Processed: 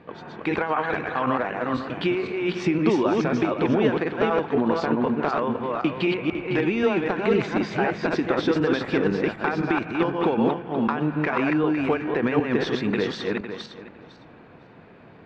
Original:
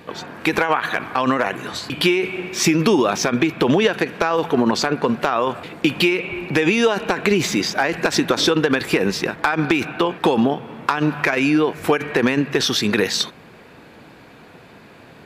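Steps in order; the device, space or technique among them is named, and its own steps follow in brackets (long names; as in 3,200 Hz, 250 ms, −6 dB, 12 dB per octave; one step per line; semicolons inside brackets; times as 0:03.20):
feedback delay that plays each chunk backwards 253 ms, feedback 40%, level −1.5 dB
phone in a pocket (low-pass filter 3,600 Hz 12 dB per octave; high-shelf EQ 2,400 Hz −10 dB)
level −5.5 dB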